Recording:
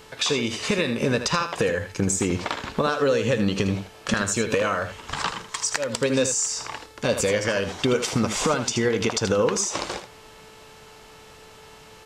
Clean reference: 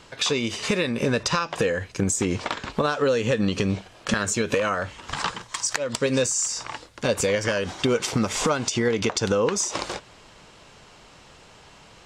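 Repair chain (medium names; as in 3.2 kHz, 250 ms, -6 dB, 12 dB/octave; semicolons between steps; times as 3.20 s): de-hum 437.4 Hz, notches 32; inverse comb 79 ms -9.5 dB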